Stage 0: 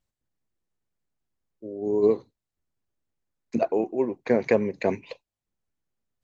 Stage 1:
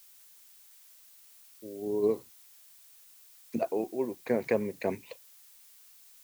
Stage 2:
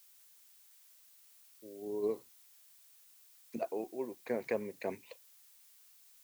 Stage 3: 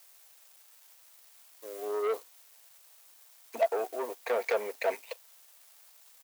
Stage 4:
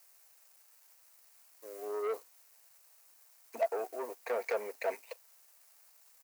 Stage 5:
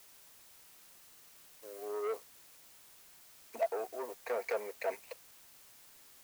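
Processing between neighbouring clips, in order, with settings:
background noise blue −50 dBFS; level −6.5 dB
low-shelf EQ 200 Hz −8.5 dB; level −5.5 dB
comb filter 4.4 ms, depth 35%; leveller curve on the samples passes 3; four-pole ladder high-pass 470 Hz, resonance 30%; level +6.5 dB
parametric band 3,400 Hz −8 dB 0.42 octaves; level −4.5 dB
background noise white −59 dBFS; level −1.5 dB

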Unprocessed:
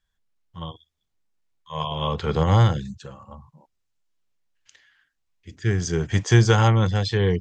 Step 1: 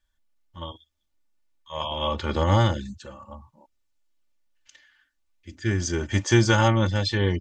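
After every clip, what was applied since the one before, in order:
comb filter 3.4 ms, depth 80%
level −1.5 dB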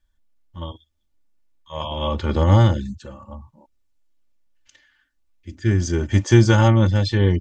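low-shelf EQ 470 Hz +8.5 dB
level −1 dB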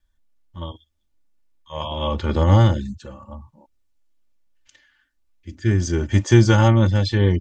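tape wow and flutter 20 cents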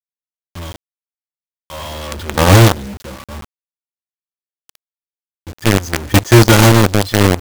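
log-companded quantiser 2 bits
level −1 dB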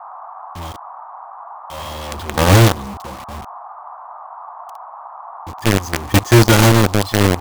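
noise in a band 690–1,200 Hz −32 dBFS
level −2.5 dB

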